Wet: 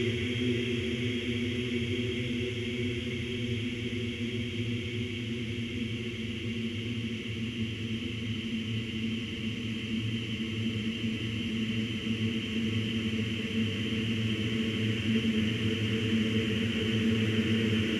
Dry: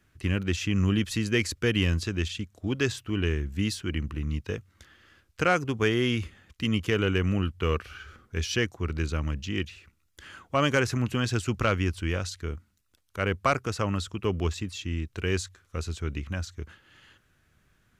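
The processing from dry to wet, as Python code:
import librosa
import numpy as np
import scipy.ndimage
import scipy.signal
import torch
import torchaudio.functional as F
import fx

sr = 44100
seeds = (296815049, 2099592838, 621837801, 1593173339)

y = fx.paulstretch(x, sr, seeds[0], factor=41.0, window_s=1.0, from_s=6.25)
y = fx.hum_notches(y, sr, base_hz=60, count=2)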